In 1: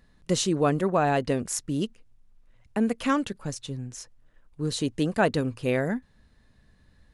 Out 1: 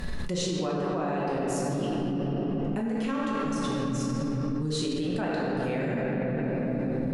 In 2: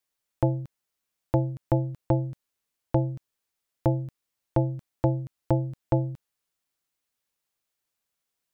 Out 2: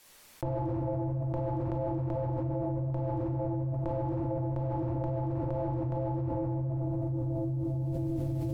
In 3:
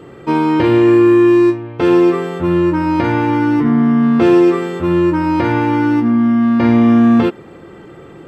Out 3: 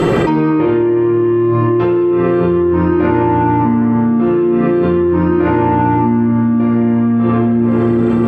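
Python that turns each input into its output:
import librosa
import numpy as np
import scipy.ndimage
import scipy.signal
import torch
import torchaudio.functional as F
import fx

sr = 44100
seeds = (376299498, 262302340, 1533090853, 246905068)

y = fx.env_lowpass_down(x, sr, base_hz=2100.0, full_db=-12.5)
y = fx.room_shoebox(y, sr, seeds[0], volume_m3=220.0, walls='hard', distance_m=1.0)
y = fx.env_flatten(y, sr, amount_pct=100)
y = F.gain(torch.from_numpy(y), -16.0).numpy()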